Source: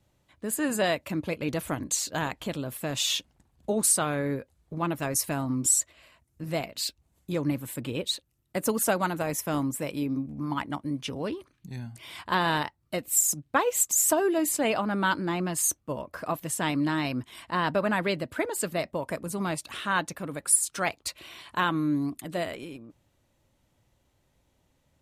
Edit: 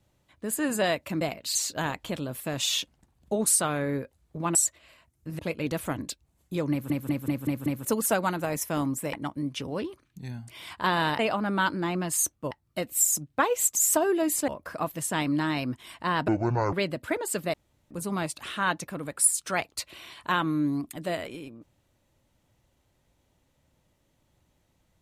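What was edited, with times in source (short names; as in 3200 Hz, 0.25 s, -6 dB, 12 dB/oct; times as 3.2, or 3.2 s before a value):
1.21–1.92 swap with 6.53–6.87
4.92–5.69 cut
7.48 stutter in place 0.19 s, 6 plays
9.9–10.61 cut
14.64–15.96 move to 12.67
17.76–18.01 speed 56%
18.82–19.19 room tone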